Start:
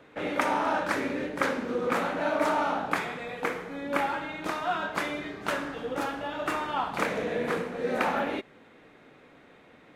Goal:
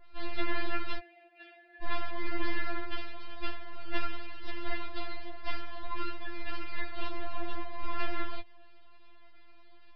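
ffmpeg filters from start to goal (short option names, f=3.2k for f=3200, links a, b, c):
-filter_complex "[0:a]adynamicequalizer=threshold=0.00794:dfrequency=2200:dqfactor=0.71:tfrequency=2200:tqfactor=0.71:attack=5:release=100:ratio=0.375:range=3:mode=cutabove:tftype=bell,aeval=exprs='abs(val(0))':c=same,asettb=1/sr,asplit=3[a][b][c];[a]atrim=end=0.984[d];[b]atrim=start=0.98:end=1.83,asetpts=PTS-STARTPTS,afade=t=in:d=0.004:c=qsin,afade=t=out:st=0.846:d=0.004:c=qsin,asplit=3[e][f][g];[e]bandpass=f=530:t=q:w=8,volume=0dB[h];[f]bandpass=f=1.84k:t=q:w=8,volume=-6dB[i];[g]bandpass=f=2.48k:t=q:w=8,volume=-9dB[j];[h][i][j]amix=inputs=3:normalize=0[k];[c]atrim=start=1.826[l];[d][k]acrossfade=d=0.004:c1=hsin:c2=qsin[m];[m][l]acrossfade=d=0.004:c1=qsin:c2=hsin,aresample=11025,aresample=44100,afftfilt=real='re*4*eq(mod(b,16),0)':imag='im*4*eq(mod(b,16),0)':win_size=2048:overlap=0.75,volume=-1.5dB"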